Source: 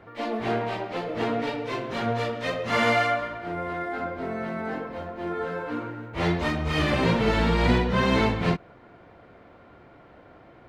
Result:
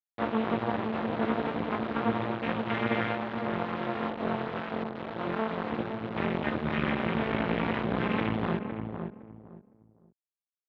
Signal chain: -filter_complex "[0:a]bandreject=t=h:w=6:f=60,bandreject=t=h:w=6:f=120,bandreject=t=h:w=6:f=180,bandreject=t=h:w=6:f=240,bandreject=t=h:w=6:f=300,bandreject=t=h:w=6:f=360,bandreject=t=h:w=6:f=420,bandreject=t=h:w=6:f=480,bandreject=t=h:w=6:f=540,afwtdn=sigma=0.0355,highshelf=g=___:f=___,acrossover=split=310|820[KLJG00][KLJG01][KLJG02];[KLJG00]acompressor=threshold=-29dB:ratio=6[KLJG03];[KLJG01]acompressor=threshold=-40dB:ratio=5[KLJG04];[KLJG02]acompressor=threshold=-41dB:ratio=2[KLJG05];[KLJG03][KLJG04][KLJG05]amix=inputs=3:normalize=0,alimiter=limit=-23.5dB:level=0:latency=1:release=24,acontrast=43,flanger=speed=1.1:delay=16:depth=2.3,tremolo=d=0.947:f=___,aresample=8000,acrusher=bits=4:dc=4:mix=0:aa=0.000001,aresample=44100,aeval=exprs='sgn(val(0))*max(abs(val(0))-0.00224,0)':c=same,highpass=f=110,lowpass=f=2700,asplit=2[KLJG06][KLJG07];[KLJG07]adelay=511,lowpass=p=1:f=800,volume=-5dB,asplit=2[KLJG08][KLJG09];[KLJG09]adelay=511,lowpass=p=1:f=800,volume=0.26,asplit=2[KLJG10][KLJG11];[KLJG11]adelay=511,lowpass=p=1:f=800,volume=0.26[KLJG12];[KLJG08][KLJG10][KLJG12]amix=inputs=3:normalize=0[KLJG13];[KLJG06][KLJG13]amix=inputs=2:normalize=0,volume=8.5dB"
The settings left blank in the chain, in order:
7.5, 2100, 220